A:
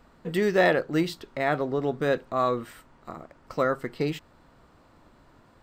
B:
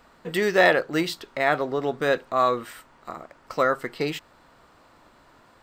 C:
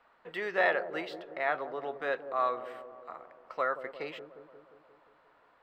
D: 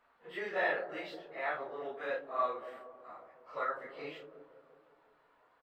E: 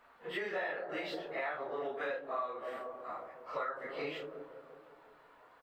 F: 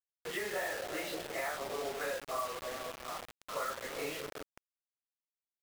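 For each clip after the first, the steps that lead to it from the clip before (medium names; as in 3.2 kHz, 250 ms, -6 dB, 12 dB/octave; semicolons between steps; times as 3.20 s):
bass shelf 380 Hz -11 dB; trim +6 dB
three-band isolator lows -15 dB, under 450 Hz, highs -20 dB, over 3.3 kHz; feedback echo behind a low-pass 177 ms, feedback 63%, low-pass 610 Hz, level -8 dB; trim -7.5 dB
phase randomisation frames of 100 ms; doubling 32 ms -9 dB; trim -5 dB
compression 8:1, threshold -42 dBFS, peak gain reduction 14.5 dB; trim +7.5 dB
bit crusher 7-bit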